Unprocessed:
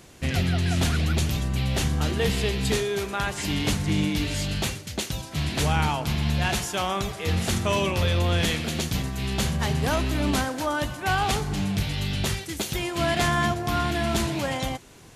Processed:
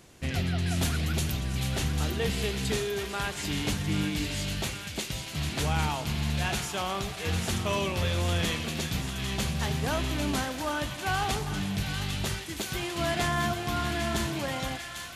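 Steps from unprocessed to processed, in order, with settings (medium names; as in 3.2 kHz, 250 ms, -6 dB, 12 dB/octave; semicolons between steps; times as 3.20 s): 0.66–1.32 s: treble shelf 10 kHz +10.5 dB; feedback echo behind a high-pass 797 ms, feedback 72%, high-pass 1.4 kHz, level -6.5 dB; on a send at -17 dB: reverberation RT60 3.1 s, pre-delay 3 ms; on the sum: trim -5 dB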